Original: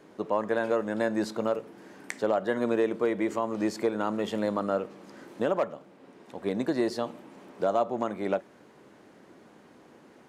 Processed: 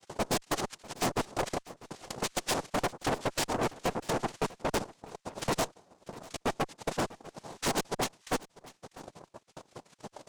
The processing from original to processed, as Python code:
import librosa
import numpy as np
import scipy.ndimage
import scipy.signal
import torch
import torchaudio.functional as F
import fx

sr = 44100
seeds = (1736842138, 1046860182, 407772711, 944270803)

p1 = fx.spec_dropout(x, sr, seeds[0], share_pct=59)
p2 = fx.noise_vocoder(p1, sr, seeds[1], bands=2)
p3 = fx.transient(p2, sr, attack_db=12, sustain_db=-12)
p4 = fx.tube_stage(p3, sr, drive_db=30.0, bias=0.45)
p5 = p4 + fx.echo_single(p4, sr, ms=646, db=-20.0, dry=0)
y = p5 * librosa.db_to_amplitude(4.0)